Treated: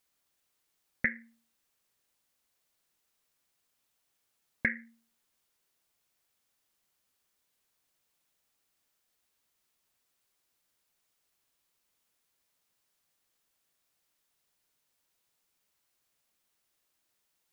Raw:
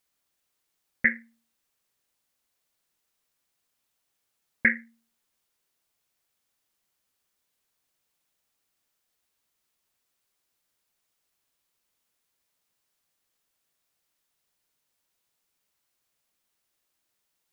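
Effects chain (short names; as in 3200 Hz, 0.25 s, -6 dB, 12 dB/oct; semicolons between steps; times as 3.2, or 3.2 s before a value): compressor 6:1, threshold -26 dBFS, peak gain reduction 10.5 dB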